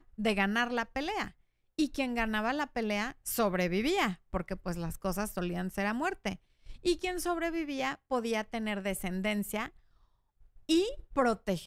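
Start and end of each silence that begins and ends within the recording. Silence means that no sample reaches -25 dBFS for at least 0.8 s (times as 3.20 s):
9.62–10.70 s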